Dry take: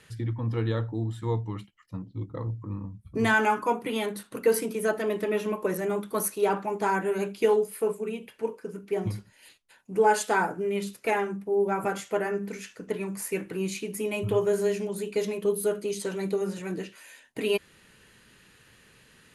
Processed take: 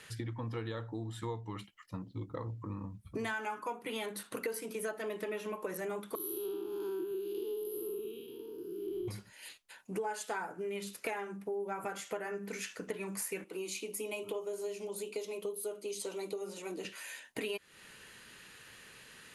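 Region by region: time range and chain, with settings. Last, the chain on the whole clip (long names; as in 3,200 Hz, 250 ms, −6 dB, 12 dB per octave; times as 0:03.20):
0:06.15–0:09.08: spectrum smeared in time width 242 ms + drawn EQ curve 130 Hz 0 dB, 210 Hz −17 dB, 340 Hz +14 dB, 570 Hz −29 dB, 1,300 Hz −15 dB, 2,100 Hz −30 dB, 3,100 Hz 0 dB, 4,700 Hz −6 dB, 8,400 Hz −26 dB, 12,000 Hz +10 dB
0:13.44–0:16.85: high-pass filter 230 Hz 24 dB per octave + parametric band 1,700 Hz −15 dB 0.43 octaves + flanger 1 Hz, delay 1.4 ms, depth 2.9 ms, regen −77%
whole clip: low-shelf EQ 350 Hz −9.5 dB; downward compressor 6 to 1, threshold −40 dBFS; level +4 dB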